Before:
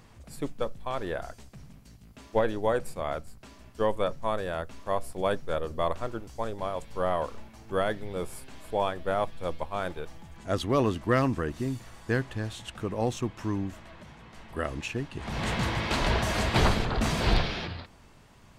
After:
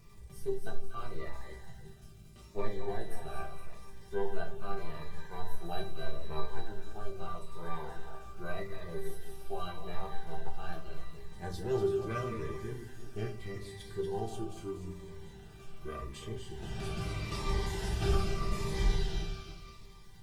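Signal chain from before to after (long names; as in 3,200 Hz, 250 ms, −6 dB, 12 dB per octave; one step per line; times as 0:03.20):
feedback delay that plays each chunk backwards 156 ms, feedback 41%, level −8.5 dB
formants moved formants +4 semitones
low-shelf EQ 150 Hz +9.5 dB
in parallel at +2 dB: downward compressor, threshold −40 dBFS, peak gain reduction 27.5 dB
on the sum: delay with a high-pass on its return 220 ms, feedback 48%, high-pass 1,500 Hz, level −7.5 dB
rectangular room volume 200 cubic metres, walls furnished, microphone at 0.98 metres
surface crackle 430 per second −40 dBFS
tuned comb filter 430 Hz, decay 0.22 s, harmonics all, mix 90%
wrong playback speed 48 kHz file played as 44.1 kHz
notch comb filter 270 Hz
phaser whose notches keep moving one way falling 0.81 Hz
level +1 dB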